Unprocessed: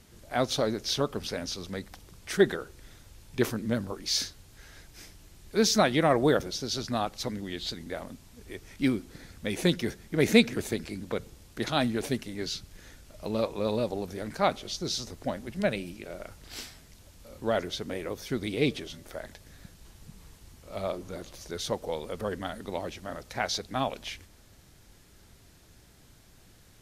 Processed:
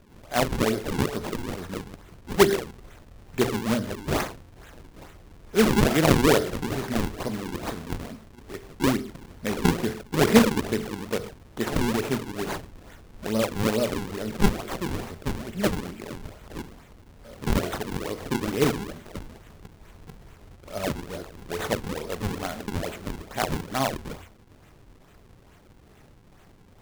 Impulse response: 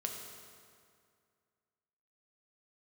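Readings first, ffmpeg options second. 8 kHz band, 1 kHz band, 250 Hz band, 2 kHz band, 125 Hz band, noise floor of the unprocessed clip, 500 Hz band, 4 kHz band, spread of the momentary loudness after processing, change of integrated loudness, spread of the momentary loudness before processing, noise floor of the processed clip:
+2.0 dB, +3.5 dB, +4.5 dB, +3.5 dB, +6.5 dB, −56 dBFS, +3.0 dB, −0.5 dB, 20 LU, +3.5 dB, 18 LU, −53 dBFS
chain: -filter_complex "[0:a]asplit=2[link_01][link_02];[1:a]atrim=start_sample=2205,afade=type=out:start_time=0.2:duration=0.01,atrim=end_sample=9261[link_03];[link_02][link_03]afir=irnorm=-1:irlink=0,volume=0.5dB[link_04];[link_01][link_04]amix=inputs=2:normalize=0,acrusher=samples=41:mix=1:aa=0.000001:lfo=1:lforange=65.6:lforate=2.3,bandreject=frequency=60:width_type=h:width=6,bandreject=frequency=120:width_type=h:width=6,volume=-2dB"

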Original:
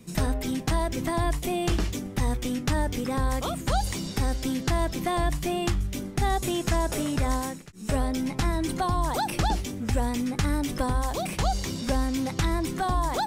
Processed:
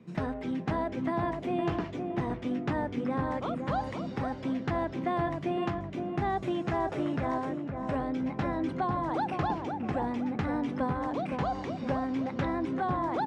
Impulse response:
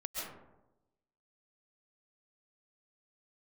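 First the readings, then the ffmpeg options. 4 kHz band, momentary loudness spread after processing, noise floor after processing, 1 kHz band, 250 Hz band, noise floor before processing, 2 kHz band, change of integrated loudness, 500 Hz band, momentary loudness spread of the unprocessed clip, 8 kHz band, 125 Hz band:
−14.0 dB, 3 LU, −40 dBFS, −2.5 dB, −2.0 dB, −38 dBFS, −5.0 dB, −4.0 dB, −1.5 dB, 3 LU, below −25 dB, −7.0 dB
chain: -filter_complex "[0:a]highpass=130,lowpass=2000,asplit=2[link_01][link_02];[link_02]adelay=514,lowpass=frequency=1100:poles=1,volume=-4dB,asplit=2[link_03][link_04];[link_04]adelay=514,lowpass=frequency=1100:poles=1,volume=0.47,asplit=2[link_05][link_06];[link_06]adelay=514,lowpass=frequency=1100:poles=1,volume=0.47,asplit=2[link_07][link_08];[link_08]adelay=514,lowpass=frequency=1100:poles=1,volume=0.47,asplit=2[link_09][link_10];[link_10]adelay=514,lowpass=frequency=1100:poles=1,volume=0.47,asplit=2[link_11][link_12];[link_12]adelay=514,lowpass=frequency=1100:poles=1,volume=0.47[link_13];[link_03][link_05][link_07][link_09][link_11][link_13]amix=inputs=6:normalize=0[link_14];[link_01][link_14]amix=inputs=2:normalize=0,volume=-3dB"

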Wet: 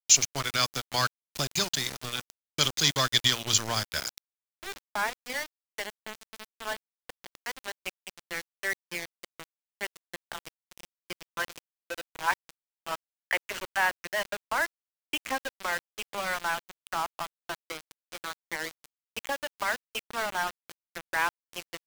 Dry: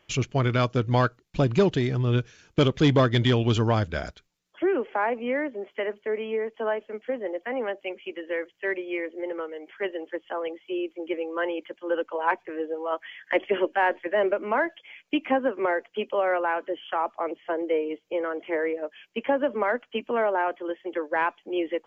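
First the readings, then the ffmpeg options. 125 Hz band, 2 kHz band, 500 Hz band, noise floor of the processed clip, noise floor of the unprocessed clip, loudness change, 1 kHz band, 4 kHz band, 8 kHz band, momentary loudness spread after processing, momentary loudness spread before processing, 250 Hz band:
−14.5 dB, −0.5 dB, −14.5 dB, below −85 dBFS, −68 dBFS, −3.5 dB, −5.0 dB, +7.0 dB, can't be measured, 18 LU, 10 LU, −16.0 dB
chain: -filter_complex "[0:a]tiltshelf=frequency=1100:gain=-7,bandreject=frequency=60:width_type=h:width=6,bandreject=frequency=120:width_type=h:width=6,bandreject=frequency=180:width_type=h:width=6,bandreject=frequency=240:width_type=h:width=6,bandreject=frequency=300:width_type=h:width=6,acrossover=split=200|630|1400[link_01][link_02][link_03][link_04];[link_02]acompressor=threshold=-39dB:ratio=12[link_05];[link_01][link_05][link_03][link_04]amix=inputs=4:normalize=0,aexciter=amount=4.9:drive=5.8:freq=4100,aeval=exprs='val(0)*gte(abs(val(0)),0.0422)':channel_layout=same,volume=-2dB"

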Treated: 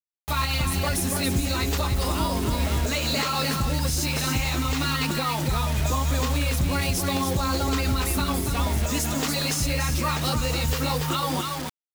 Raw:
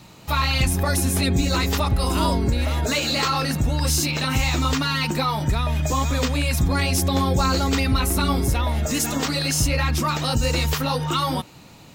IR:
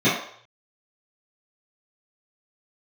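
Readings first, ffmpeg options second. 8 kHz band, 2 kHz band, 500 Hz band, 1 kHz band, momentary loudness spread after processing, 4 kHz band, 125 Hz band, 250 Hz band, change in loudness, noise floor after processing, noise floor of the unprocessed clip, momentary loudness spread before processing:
−2.5 dB, −3.0 dB, −3.0 dB, −3.0 dB, 1 LU, −3.0 dB, −3.5 dB, −3.5 dB, −3.0 dB, −31 dBFS, −46 dBFS, 3 LU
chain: -af "aecho=1:1:285:0.501,acrusher=bits=4:mix=0:aa=0.000001,alimiter=limit=-12.5dB:level=0:latency=1:release=104,volume=-2.5dB"

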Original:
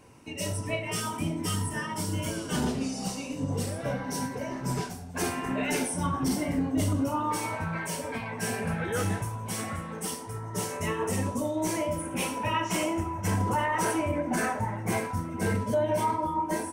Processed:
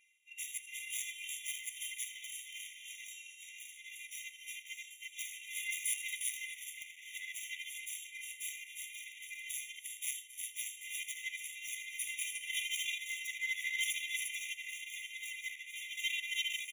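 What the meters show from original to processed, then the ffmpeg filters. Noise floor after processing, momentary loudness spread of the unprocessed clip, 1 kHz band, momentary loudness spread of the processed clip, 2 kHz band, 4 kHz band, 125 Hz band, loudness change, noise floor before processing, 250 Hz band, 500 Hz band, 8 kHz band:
−55 dBFS, 6 LU, below −40 dB, 11 LU, −3.5 dB, −1.0 dB, below −40 dB, −9.5 dB, −38 dBFS, below −40 dB, below −40 dB, −4.0 dB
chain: -filter_complex "[0:a]afftfilt=real='hypot(re,im)*cos(PI*b)':imag='0':win_size=512:overlap=0.75,highshelf=frequency=4100:gain=4.5,acrusher=bits=4:mode=log:mix=0:aa=0.000001,equalizer=frequency=125:width_type=o:width=1:gain=4,equalizer=frequency=250:width_type=o:width=1:gain=4,equalizer=frequency=500:width_type=o:width=1:gain=-4,equalizer=frequency=1000:width_type=o:width=1:gain=9,equalizer=frequency=2000:width_type=o:width=1:gain=-6,equalizer=frequency=4000:width_type=o:width=1:gain=-10,asplit=2[link_01][link_02];[link_02]aecho=0:1:43|81|260|318|356|607:0.282|0.473|0.211|0.316|0.668|0.224[link_03];[link_01][link_03]amix=inputs=2:normalize=0,flanger=delay=8.5:depth=6.5:regen=33:speed=0.99:shape=triangular,aexciter=amount=4.3:drive=4.4:freq=8700,adynamicsmooth=sensitivity=7:basefreq=2300,bandreject=frequency=50:width_type=h:width=6,bandreject=frequency=100:width_type=h:width=6,bandreject=frequency=150:width_type=h:width=6,bandreject=frequency=200:width_type=h:width=6,bandreject=frequency=250:width_type=h:width=6,bandreject=frequency=300:width_type=h:width=6,bandreject=frequency=350:width_type=h:width=6,bandreject=frequency=400:width_type=h:width=6,bandreject=frequency=450:width_type=h:width=6,asoftclip=type=hard:threshold=-29.5dB,areverse,acompressor=mode=upward:threshold=-44dB:ratio=2.5,areverse,afftfilt=real='re*eq(mod(floor(b*sr/1024/1900),2),1)':imag='im*eq(mod(floor(b*sr/1024/1900),2),1)':win_size=1024:overlap=0.75,volume=9.5dB"

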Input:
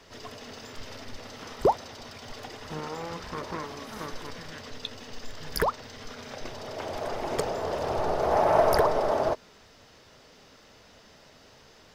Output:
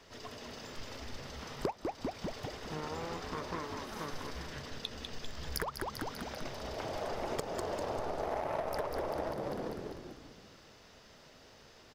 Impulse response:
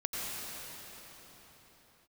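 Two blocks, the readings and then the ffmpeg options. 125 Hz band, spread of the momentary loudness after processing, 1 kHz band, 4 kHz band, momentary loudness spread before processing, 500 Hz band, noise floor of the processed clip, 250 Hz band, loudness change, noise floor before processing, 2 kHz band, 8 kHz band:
−5.0 dB, 19 LU, −10.5 dB, −4.5 dB, 19 LU, −10.5 dB, −58 dBFS, −4.5 dB, −10.5 dB, −55 dBFS, −6.5 dB, −5.0 dB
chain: -filter_complex "[0:a]aeval=exprs='0.447*(cos(1*acos(clip(val(0)/0.447,-1,1)))-cos(1*PI/2))+0.0316*(cos(7*acos(clip(val(0)/0.447,-1,1)))-cos(7*PI/2))':channel_layout=same,asplit=8[link_01][link_02][link_03][link_04][link_05][link_06][link_07][link_08];[link_02]adelay=197,afreqshift=-72,volume=-7dB[link_09];[link_03]adelay=394,afreqshift=-144,volume=-12.2dB[link_10];[link_04]adelay=591,afreqshift=-216,volume=-17.4dB[link_11];[link_05]adelay=788,afreqshift=-288,volume=-22.6dB[link_12];[link_06]adelay=985,afreqshift=-360,volume=-27.8dB[link_13];[link_07]adelay=1182,afreqshift=-432,volume=-33dB[link_14];[link_08]adelay=1379,afreqshift=-504,volume=-38.2dB[link_15];[link_01][link_09][link_10][link_11][link_12][link_13][link_14][link_15]amix=inputs=8:normalize=0,acompressor=threshold=-34dB:ratio=8,volume=1.5dB"

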